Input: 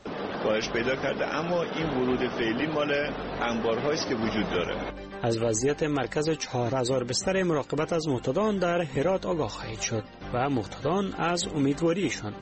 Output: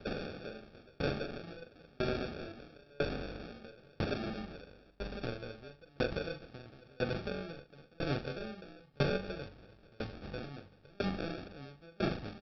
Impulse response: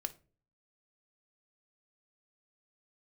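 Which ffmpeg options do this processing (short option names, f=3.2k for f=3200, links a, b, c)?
-filter_complex "[1:a]atrim=start_sample=2205,asetrate=61740,aresample=44100[a];[0:a][a]afir=irnorm=-1:irlink=0,acrossover=split=180|3000[b][c][d];[c]acompressor=threshold=-38dB:ratio=2.5[e];[b][e][d]amix=inputs=3:normalize=0,aresample=11025,acrusher=samples=11:mix=1:aa=0.000001,aresample=44100,asplit=2[f][g];[g]adelay=42,volume=-8dB[h];[f][h]amix=inputs=2:normalize=0,aeval=exprs='val(0)*pow(10,-33*if(lt(mod(1*n/s,1),2*abs(1)/1000),1-mod(1*n/s,1)/(2*abs(1)/1000),(mod(1*n/s,1)-2*abs(1)/1000)/(1-2*abs(1)/1000))/20)':c=same,volume=5.5dB"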